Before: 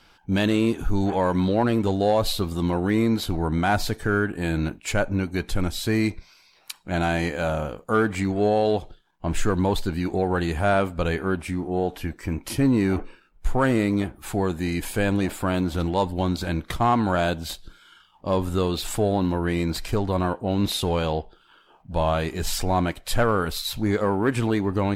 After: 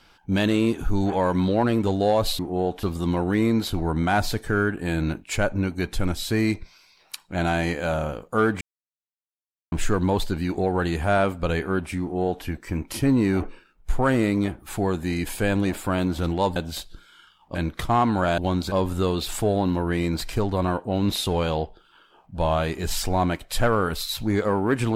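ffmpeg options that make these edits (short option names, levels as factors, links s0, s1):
-filter_complex "[0:a]asplit=9[s0][s1][s2][s3][s4][s5][s6][s7][s8];[s0]atrim=end=2.392[s9];[s1]atrim=start=11.568:end=12.012[s10];[s2]atrim=start=2.388:end=8.17,asetpts=PTS-STARTPTS,afade=t=out:st=5.778:d=0.004:c=hsin[s11];[s3]atrim=start=8.17:end=9.28,asetpts=PTS-STARTPTS,volume=0[s12];[s4]atrim=start=9.28:end=16.122,asetpts=PTS-STARTPTS,afade=t=in:d=0.004:c=hsin[s13];[s5]atrim=start=17.288:end=18.282[s14];[s6]atrim=start=16.458:end=17.292[s15];[s7]atrim=start=16.118:end=16.462[s16];[s8]atrim=start=18.278[s17];[s9][s10]acrossfade=d=0.004:c1=hsin:c2=hsin[s18];[s11][s12][s13]concat=n=3:v=0:a=1[s19];[s18][s19]acrossfade=d=0.004:c1=hsin:c2=hsin[s20];[s20][s14]acrossfade=d=0.004:c1=hsin:c2=hsin[s21];[s21][s15]acrossfade=d=0.004:c1=hsin:c2=hsin[s22];[s22][s16]acrossfade=d=0.004:c1=hsin:c2=hsin[s23];[s23][s17]acrossfade=d=0.004:c1=hsin:c2=hsin"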